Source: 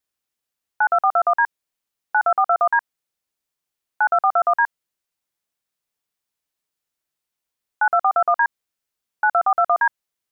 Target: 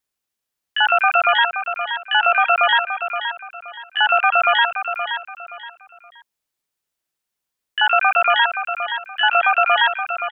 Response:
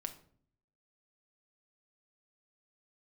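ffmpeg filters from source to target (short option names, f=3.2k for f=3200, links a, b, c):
-filter_complex "[0:a]asplit=2[a][b];[b]asetrate=88200,aresample=44100,atempo=0.5,volume=-2dB[c];[a][c]amix=inputs=2:normalize=0,aecho=1:1:523|1046|1569:0.376|0.109|0.0316"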